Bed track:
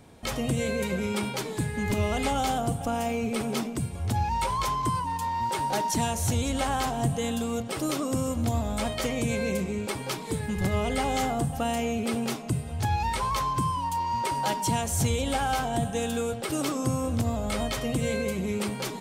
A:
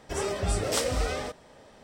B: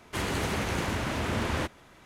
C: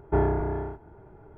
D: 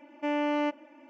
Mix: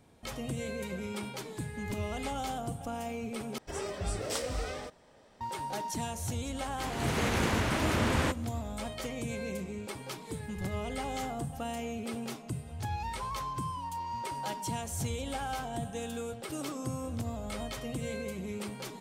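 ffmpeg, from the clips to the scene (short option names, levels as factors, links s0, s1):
-filter_complex "[0:a]volume=0.355[s0];[2:a]dynaudnorm=f=120:g=7:m=4.73[s1];[s0]asplit=2[s2][s3];[s2]atrim=end=3.584[s4];[1:a]atrim=end=1.83,asetpts=PTS-STARTPTS,volume=0.447[s5];[s3]atrim=start=5.406[s6];[s1]atrim=end=2.05,asetpts=PTS-STARTPTS,volume=0.251,afade=t=in:d=0.004:c=hsin,afade=t=out:st=2.046:d=0.004:c=hsin,adelay=6650[s7];[s4][s5]acrossfade=d=0.004:c1=hsin:c2=hsin[s8];[s8][s6]acrossfade=d=0.004:c1=hsin:c2=hsin[s9];[s9][s7]amix=inputs=2:normalize=0"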